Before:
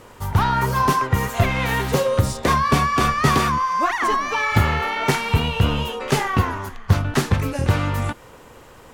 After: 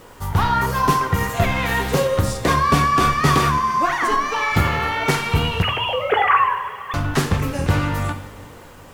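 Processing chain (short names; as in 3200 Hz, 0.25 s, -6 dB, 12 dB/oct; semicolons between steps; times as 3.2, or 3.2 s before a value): 5.62–6.94 sine-wave speech; two-slope reverb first 0.52 s, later 3.5 s, from -15 dB, DRR 5.5 dB; bit-crush 9-bit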